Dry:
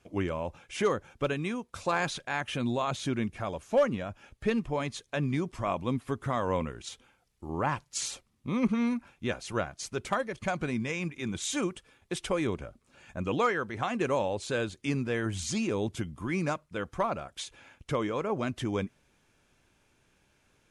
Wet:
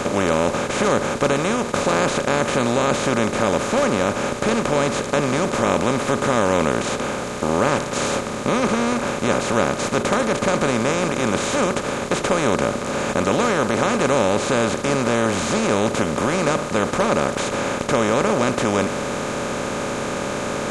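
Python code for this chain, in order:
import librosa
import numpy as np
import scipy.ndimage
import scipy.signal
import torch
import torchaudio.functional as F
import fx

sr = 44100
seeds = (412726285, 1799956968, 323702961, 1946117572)

y = fx.bin_compress(x, sr, power=0.2)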